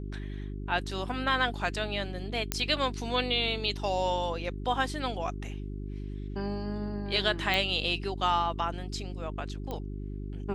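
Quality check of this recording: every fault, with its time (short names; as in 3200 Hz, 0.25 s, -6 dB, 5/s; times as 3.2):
hum 50 Hz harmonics 8 -37 dBFS
2.52 pop -9 dBFS
7.54 pop -14 dBFS
9.71 pop -22 dBFS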